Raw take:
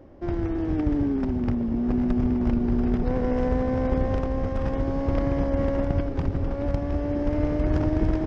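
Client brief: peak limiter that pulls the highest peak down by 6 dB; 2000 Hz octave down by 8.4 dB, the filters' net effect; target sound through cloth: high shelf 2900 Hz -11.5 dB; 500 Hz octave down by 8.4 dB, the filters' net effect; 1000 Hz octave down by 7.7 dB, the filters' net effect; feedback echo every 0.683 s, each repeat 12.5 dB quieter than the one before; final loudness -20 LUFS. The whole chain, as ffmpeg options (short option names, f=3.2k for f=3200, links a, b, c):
-af "equalizer=f=500:t=o:g=-8.5,equalizer=f=1k:t=o:g=-4.5,equalizer=f=2k:t=o:g=-4.5,alimiter=limit=-17.5dB:level=0:latency=1,highshelf=f=2.9k:g=-11.5,aecho=1:1:683|1366|2049:0.237|0.0569|0.0137,volume=8.5dB"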